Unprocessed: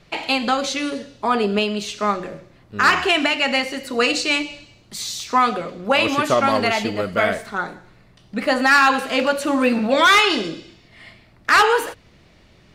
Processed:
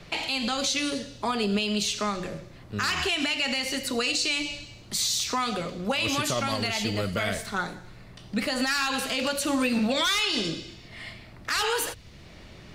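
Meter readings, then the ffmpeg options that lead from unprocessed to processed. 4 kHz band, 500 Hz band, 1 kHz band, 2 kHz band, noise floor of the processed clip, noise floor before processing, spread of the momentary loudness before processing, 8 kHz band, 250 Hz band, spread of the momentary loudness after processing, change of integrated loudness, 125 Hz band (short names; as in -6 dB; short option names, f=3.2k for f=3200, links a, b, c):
-3.5 dB, -10.0 dB, -12.5 dB, -10.0 dB, -48 dBFS, -52 dBFS, 14 LU, +1.0 dB, -6.0 dB, 13 LU, -8.0 dB, -0.5 dB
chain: -filter_complex "[0:a]acrossover=split=150|3000[a][b][c];[b]acompressor=threshold=-53dB:ratio=1.5[d];[a][d][c]amix=inputs=3:normalize=0,alimiter=limit=-22dB:level=0:latency=1:release=83,volume=5.5dB"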